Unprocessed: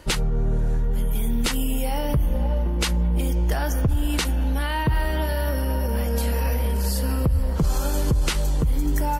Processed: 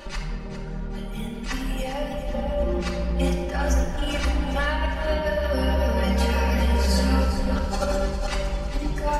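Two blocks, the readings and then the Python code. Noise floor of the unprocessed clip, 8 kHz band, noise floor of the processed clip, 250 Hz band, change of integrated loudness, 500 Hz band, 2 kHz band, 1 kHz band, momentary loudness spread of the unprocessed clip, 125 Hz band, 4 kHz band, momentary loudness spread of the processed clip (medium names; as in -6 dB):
-24 dBFS, -5.5 dB, -32 dBFS, 0.0 dB, -1.5 dB, +3.5 dB, +1.5 dB, +1.5 dB, 2 LU, -3.0 dB, -1.5 dB, 11 LU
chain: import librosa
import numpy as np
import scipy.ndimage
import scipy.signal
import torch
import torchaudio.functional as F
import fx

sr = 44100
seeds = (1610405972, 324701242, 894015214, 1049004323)

y = scipy.signal.sosfilt(scipy.signal.butter(2, 5300.0, 'lowpass', fs=sr, output='sos'), x)
y = fx.dereverb_blind(y, sr, rt60_s=0.72)
y = fx.low_shelf(y, sr, hz=270.0, db=-8.0)
y = y + 0.7 * np.pad(y, (int(5.1 * sr / 1000.0), 0))[:len(y)]
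y = fx.dynamic_eq(y, sr, hz=3500.0, q=2.8, threshold_db=-45.0, ratio=4.0, max_db=-6)
y = fx.over_compress(y, sr, threshold_db=-31.0, ratio=-0.5)
y = fx.wow_flutter(y, sr, seeds[0], rate_hz=2.1, depth_cents=24.0)
y = fx.echo_feedback(y, sr, ms=403, feedback_pct=45, wet_db=-10.5)
y = fx.room_shoebox(y, sr, seeds[1], volume_m3=2300.0, walls='mixed', distance_m=2.4)
y = F.gain(torch.from_numpy(y), 2.0).numpy()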